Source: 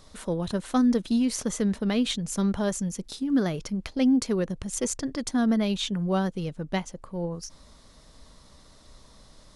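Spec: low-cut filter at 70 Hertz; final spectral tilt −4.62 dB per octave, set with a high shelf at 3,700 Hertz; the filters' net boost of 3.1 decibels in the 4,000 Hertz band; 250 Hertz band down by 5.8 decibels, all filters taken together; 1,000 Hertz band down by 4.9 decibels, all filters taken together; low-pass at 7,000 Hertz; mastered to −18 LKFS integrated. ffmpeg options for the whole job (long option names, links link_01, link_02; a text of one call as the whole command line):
ffmpeg -i in.wav -af "highpass=70,lowpass=7000,equalizer=frequency=250:width_type=o:gain=-6.5,equalizer=frequency=1000:width_type=o:gain=-6.5,highshelf=frequency=3700:gain=-7.5,equalizer=frequency=4000:width_type=o:gain=9,volume=13.5dB" out.wav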